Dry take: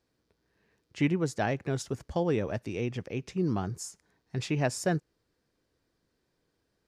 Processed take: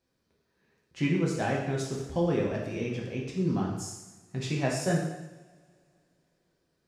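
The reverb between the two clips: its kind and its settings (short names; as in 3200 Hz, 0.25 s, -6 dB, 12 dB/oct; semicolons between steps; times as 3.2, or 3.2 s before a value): two-slope reverb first 0.93 s, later 3.1 s, from -25 dB, DRR -3 dB; gain -4 dB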